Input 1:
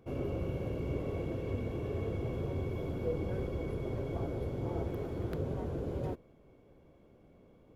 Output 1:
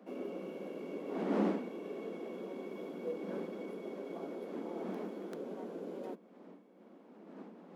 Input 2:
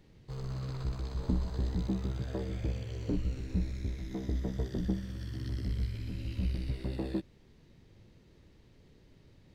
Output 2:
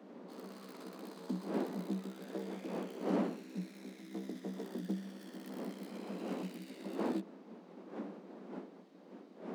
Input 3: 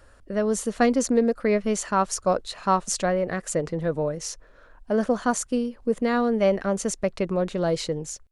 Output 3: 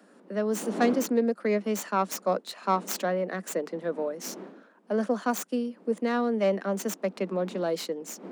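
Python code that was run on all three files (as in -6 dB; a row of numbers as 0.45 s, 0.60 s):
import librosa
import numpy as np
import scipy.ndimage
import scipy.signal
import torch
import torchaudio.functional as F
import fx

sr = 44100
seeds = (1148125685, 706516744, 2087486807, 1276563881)

y = fx.tracing_dist(x, sr, depth_ms=0.18)
y = fx.dmg_wind(y, sr, seeds[0], corner_hz=350.0, level_db=-38.0)
y = scipy.signal.sosfilt(scipy.signal.butter(16, 180.0, 'highpass', fs=sr, output='sos'), y)
y = y * 10.0 ** (-4.0 / 20.0)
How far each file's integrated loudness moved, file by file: -4.0 LU, -6.0 LU, -4.0 LU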